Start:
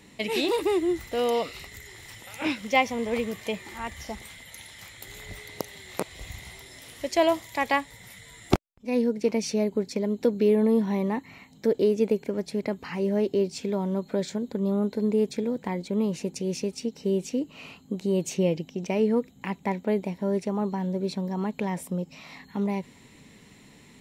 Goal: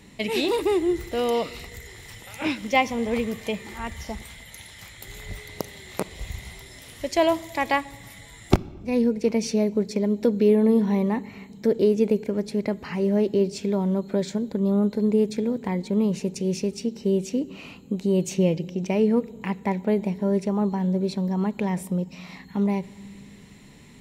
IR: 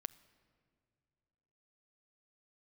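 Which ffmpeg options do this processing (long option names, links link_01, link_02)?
-filter_complex "[0:a]asplit=2[link_01][link_02];[1:a]atrim=start_sample=2205,asetrate=61740,aresample=44100,lowshelf=frequency=150:gain=9.5[link_03];[link_02][link_03]afir=irnorm=-1:irlink=0,volume=16dB[link_04];[link_01][link_04]amix=inputs=2:normalize=0,volume=-11dB"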